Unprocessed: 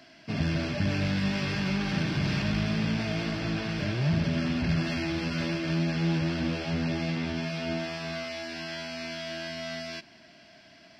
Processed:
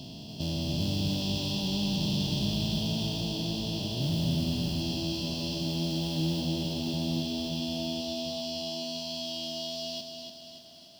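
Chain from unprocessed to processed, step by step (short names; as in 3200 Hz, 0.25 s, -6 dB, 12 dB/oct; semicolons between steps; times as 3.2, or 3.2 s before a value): stepped spectrum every 0.4 s; elliptic band-stop 960–3200 Hz, stop band 40 dB; resonant high shelf 1900 Hz +6.5 dB, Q 3; modulation noise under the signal 23 dB; lo-fi delay 0.289 s, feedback 55%, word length 10-bit, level -6 dB; gain -1.5 dB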